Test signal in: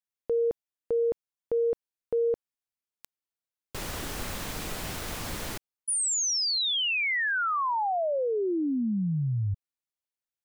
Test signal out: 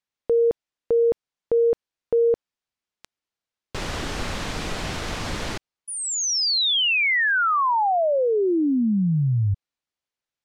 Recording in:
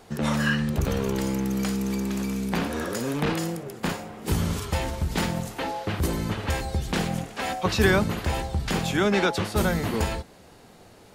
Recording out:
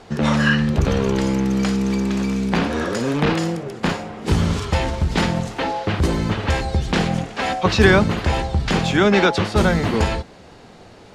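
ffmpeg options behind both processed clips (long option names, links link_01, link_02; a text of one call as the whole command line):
ffmpeg -i in.wav -af "lowpass=5800,volume=7dB" out.wav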